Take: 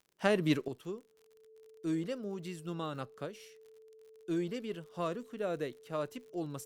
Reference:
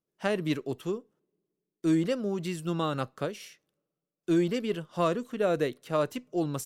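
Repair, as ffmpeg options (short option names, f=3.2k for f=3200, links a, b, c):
-af "adeclick=t=4,bandreject=f=440:w=30,asetnsamples=n=441:p=0,asendcmd='0.68 volume volume 9dB',volume=0dB"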